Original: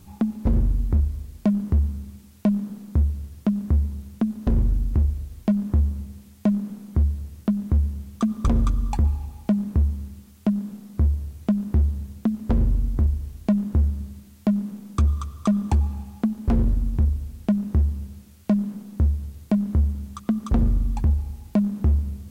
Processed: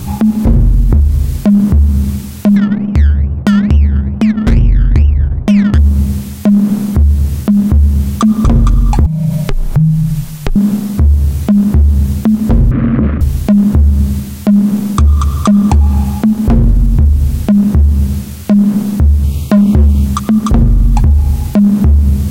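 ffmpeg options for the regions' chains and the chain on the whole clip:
ffmpeg -i in.wav -filter_complex "[0:a]asettb=1/sr,asplit=3[link_01][link_02][link_03];[link_01]atrim=end=2.564[link_04];[link_02]atrim=start=2.56:end=5.78,asetpts=PTS-STARTPTS,afade=type=in:duration=0.004:curve=qsin,afade=type=out:start_time=3.216:duration=0.004:curve=qsin,acrusher=samples=22:mix=1:aa=0.000001:lfo=1:lforange=13.2:lforate=2.3,adynamicsmooth=sensitivity=2.5:basefreq=540[link_05];[link_03]atrim=start=5.776[link_06];[link_04][link_05]acrossfade=duration=0.004:curve1=hsin:curve2=qsin[link_07];[link_07][link_06]acrossfade=duration=0.004:curve1=qsin:curve2=hsin,asettb=1/sr,asplit=3[link_08][link_09][link_10];[link_08]atrim=end=9.064[link_11];[link_09]atrim=start=9.06:end=10.56,asetpts=PTS-STARTPTS,afade=type=in:duration=0.004:curve=qsin,afade=type=out:start_time=1.496:duration=0.004:curve=qsin,acompressor=threshold=-36dB:ratio=3:attack=3.2:release=140:knee=1:detection=peak,afreqshift=-230[link_12];[link_10]atrim=start=10.556[link_13];[link_11][link_12]acrossfade=duration=0.004:curve1=hsin:curve2=qsin[link_14];[link_14][link_13]acrossfade=duration=0.004:curve1=qsin:curve2=hsin,asettb=1/sr,asplit=3[link_15][link_16][link_17];[link_15]atrim=end=12.714[link_18];[link_16]atrim=start=12.71:end=13.21,asetpts=PTS-STARTPTS,afade=type=in:duration=0.004:curve=qsin,afade=type=out:start_time=0.496:duration=0.004:curve=qsin,acrusher=bits=6:mode=log:mix=0:aa=0.000001,highpass=150,equalizer=frequency=190:width_type=q:width=4:gain=9,equalizer=frequency=290:width_type=q:width=4:gain=10,equalizer=frequency=540:width_type=q:width=4:gain=6,equalizer=frequency=830:width_type=q:width=4:gain=-10,equalizer=frequency=1200:width_type=q:width=4:gain=6,lowpass=frequency=2100:width=0.5412,lowpass=frequency=2100:width=1.3066[link_19];[link_17]atrim=start=13.206[link_20];[link_18][link_19]acrossfade=duration=0.004:curve1=hsin:curve2=qsin[link_21];[link_21][link_20]acrossfade=duration=0.004:curve1=qsin:curve2=hsin,asettb=1/sr,asplit=3[link_22][link_23][link_24];[link_22]atrim=end=19.244[link_25];[link_23]atrim=start=19.24:end=20.05,asetpts=PTS-STARTPTS,afade=type=in:duration=0.004:curve=qsin,afade=type=out:start_time=0.806:duration=0.004:curve=qsin,asuperstop=centerf=1700:order=8:qfactor=2.2,equalizer=frequency=3000:width=1.8:gain=4.5,asoftclip=type=hard:threshold=-20dB[link_26];[link_24]atrim=start=20.046[link_27];[link_25][link_26]acrossfade=duration=0.004:curve1=hsin:curve2=qsin[link_28];[link_28][link_27]acrossfade=duration=0.004:curve1=qsin:curve2=hsin,equalizer=frequency=130:width=5.3:gain=10,acompressor=threshold=-29dB:ratio=2.5,alimiter=level_in=25.5dB:limit=-1dB:release=50:level=0:latency=1,volume=-1dB" out.wav

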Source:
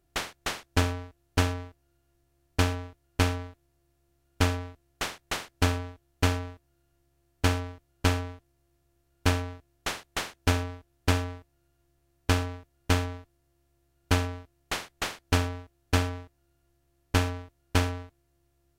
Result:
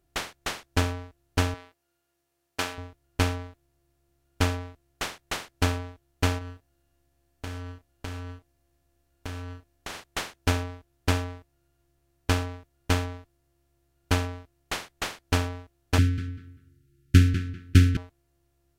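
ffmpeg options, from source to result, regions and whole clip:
ffmpeg -i in.wav -filter_complex "[0:a]asettb=1/sr,asplit=3[link_01][link_02][link_03];[link_01]atrim=end=1.544[link_04];[link_02]atrim=start=1.54:end=2.78,asetpts=PTS-STARTPTS,afade=type=in:duration=0.004:curve=qsin,afade=type=out:start_time=1.236:duration=0.004:curve=qsin,highpass=frequency=610:poles=1,asplit=2[link_05][link_06];[link_06]adelay=17,volume=-13.5dB[link_07];[link_05][link_07]amix=inputs=2:normalize=0,atrim=end_sample=54684[link_08];[link_03]atrim=start=2.776[link_09];[link_04][link_08]acrossfade=duration=0.004:curve1=hsin:curve2=qsin[link_10];[link_10][link_09]acrossfade=duration=0.004:curve1=qsin:curve2=hsin,asettb=1/sr,asplit=3[link_11][link_12][link_13];[link_11]atrim=end=6.384[link_14];[link_12]atrim=start=6.38:end=10.04,asetpts=PTS-STARTPTS,afade=type=in:duration=0.004:curve=qsin,afade=type=out:start_time=3.656:duration=0.004:curve=qsin,acompressor=threshold=-33dB:ratio=6:attack=3.2:release=140:knee=1:detection=peak,asplit=2[link_15][link_16];[link_16]adelay=33,volume=-9dB[link_17];[link_15][link_17]amix=inputs=2:normalize=0,atrim=end_sample=161406[link_18];[link_13]atrim=start=10.036[link_19];[link_14][link_18]acrossfade=duration=0.004:curve1=hsin:curve2=qsin[link_20];[link_20][link_19]acrossfade=duration=0.004:curve1=qsin:curve2=hsin,asettb=1/sr,asplit=3[link_21][link_22][link_23];[link_21]atrim=end=15.984[link_24];[link_22]atrim=start=15.98:end=17.97,asetpts=PTS-STARTPTS,afade=type=in:duration=0.004:curve=qsin,afade=type=out:start_time=1.986:duration=0.004:curve=qsin,asuperstop=centerf=740:order=12:qfactor=0.77,equalizer=frequency=140:width_type=o:width=2.1:gain=14,asplit=2[link_25][link_26];[link_26]adelay=196,lowpass=frequency=3300:poles=1,volume=-8.5dB,asplit=2[link_27][link_28];[link_28]adelay=196,lowpass=frequency=3300:poles=1,volume=0.25,asplit=2[link_29][link_30];[link_30]adelay=196,lowpass=frequency=3300:poles=1,volume=0.25[link_31];[link_25][link_27][link_29][link_31]amix=inputs=4:normalize=0,atrim=end_sample=87759[link_32];[link_23]atrim=start=17.966[link_33];[link_24][link_32]acrossfade=duration=0.004:curve1=hsin:curve2=qsin[link_34];[link_34][link_33]acrossfade=duration=0.004:curve1=qsin:curve2=hsin" out.wav

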